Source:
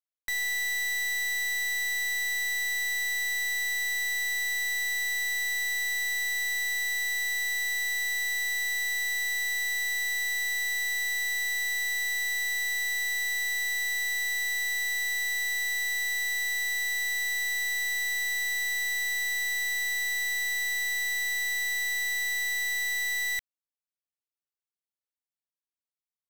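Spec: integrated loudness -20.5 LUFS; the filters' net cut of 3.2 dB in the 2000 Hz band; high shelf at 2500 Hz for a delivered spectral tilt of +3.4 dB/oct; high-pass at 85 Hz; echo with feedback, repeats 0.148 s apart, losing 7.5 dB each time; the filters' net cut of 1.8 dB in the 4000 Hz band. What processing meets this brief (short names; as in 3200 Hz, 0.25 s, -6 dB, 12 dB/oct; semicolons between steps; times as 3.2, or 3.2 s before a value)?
HPF 85 Hz; bell 2000 Hz -4 dB; high shelf 2500 Hz +4 dB; bell 4000 Hz -4 dB; feedback echo 0.148 s, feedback 42%, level -7.5 dB; gain +7.5 dB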